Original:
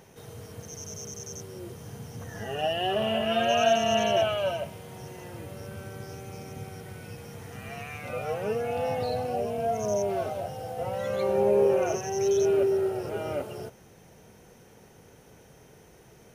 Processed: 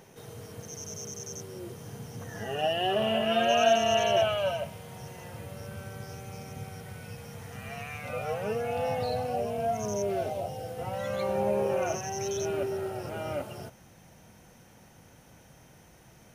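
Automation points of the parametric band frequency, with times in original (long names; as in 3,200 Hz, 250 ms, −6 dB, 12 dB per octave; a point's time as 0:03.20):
parametric band −11.5 dB 0.4 octaves
0:03.25 71 Hz
0:04.34 340 Hz
0:09.59 340 Hz
0:10.46 1,700 Hz
0:10.94 420 Hz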